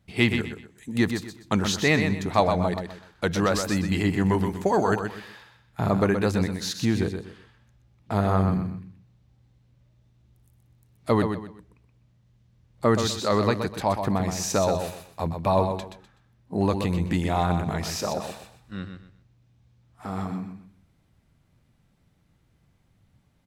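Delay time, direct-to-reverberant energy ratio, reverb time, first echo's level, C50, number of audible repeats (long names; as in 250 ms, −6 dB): 125 ms, no reverb audible, no reverb audible, −7.0 dB, no reverb audible, 3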